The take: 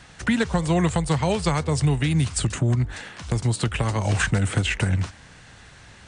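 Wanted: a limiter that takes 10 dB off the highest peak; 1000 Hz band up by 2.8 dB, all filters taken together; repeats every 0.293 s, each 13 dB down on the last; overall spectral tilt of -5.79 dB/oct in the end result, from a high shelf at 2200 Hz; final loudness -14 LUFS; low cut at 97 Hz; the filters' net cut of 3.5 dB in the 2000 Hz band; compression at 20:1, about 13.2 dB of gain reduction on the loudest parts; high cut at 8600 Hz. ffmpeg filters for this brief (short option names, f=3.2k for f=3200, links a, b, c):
-af "highpass=97,lowpass=8.6k,equalizer=f=1k:t=o:g=5.5,equalizer=f=2k:t=o:g=-3,highshelf=f=2.2k:g=-7,acompressor=threshold=-30dB:ratio=20,alimiter=level_in=3.5dB:limit=-24dB:level=0:latency=1,volume=-3.5dB,aecho=1:1:293|586|879:0.224|0.0493|0.0108,volume=23.5dB"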